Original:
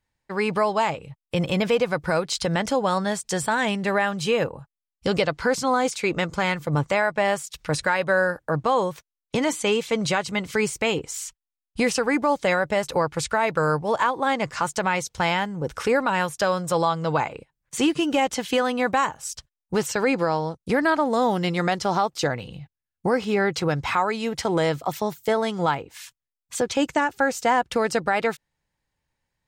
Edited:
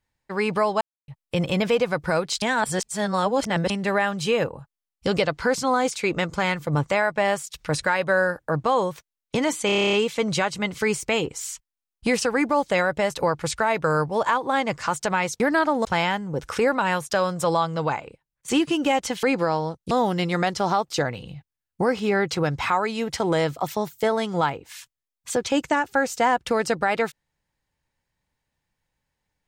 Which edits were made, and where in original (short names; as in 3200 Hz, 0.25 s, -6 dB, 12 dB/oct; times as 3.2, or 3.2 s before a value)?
0.81–1.08 mute
2.42–3.7 reverse
9.66 stutter 0.03 s, 10 plays
16.92–17.76 fade out, to -10 dB
18.51–20.03 cut
20.71–21.16 move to 15.13